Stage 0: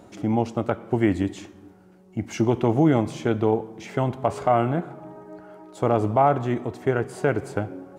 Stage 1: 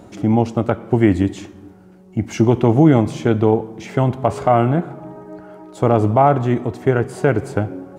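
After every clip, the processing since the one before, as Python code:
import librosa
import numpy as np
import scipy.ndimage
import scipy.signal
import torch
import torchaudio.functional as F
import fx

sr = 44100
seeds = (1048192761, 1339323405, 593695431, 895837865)

y = fx.low_shelf(x, sr, hz=270.0, db=5.0)
y = y * librosa.db_to_amplitude(4.5)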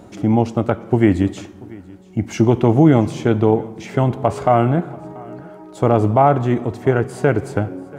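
y = x + 10.0 ** (-23.0 / 20.0) * np.pad(x, (int(685 * sr / 1000.0), 0))[:len(x)]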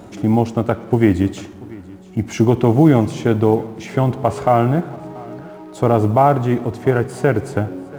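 y = fx.law_mismatch(x, sr, coded='mu')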